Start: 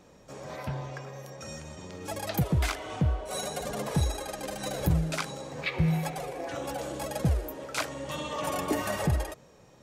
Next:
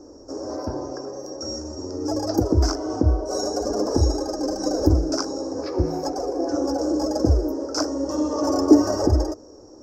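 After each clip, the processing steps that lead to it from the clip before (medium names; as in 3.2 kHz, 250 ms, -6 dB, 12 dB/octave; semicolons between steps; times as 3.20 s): FFT filter 100 Hz 0 dB, 150 Hz -22 dB, 300 Hz +12 dB, 460 Hz +3 dB, 1.5 kHz -9 dB, 2.2 kHz -29 dB, 3.7 kHz -27 dB, 5.3 kHz +9 dB, 9.8 kHz -24 dB, 14 kHz -15 dB; trim +8.5 dB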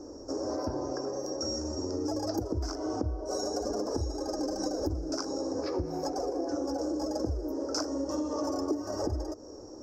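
compression 8:1, threshold -29 dBFS, peak gain reduction 21 dB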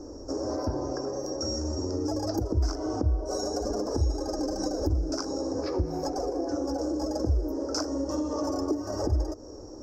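bass shelf 91 Hz +11 dB; trim +1.5 dB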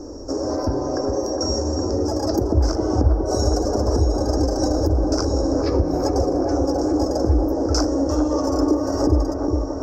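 feedback echo behind a low-pass 410 ms, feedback 78%, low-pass 1.4 kHz, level -5 dB; trim +7 dB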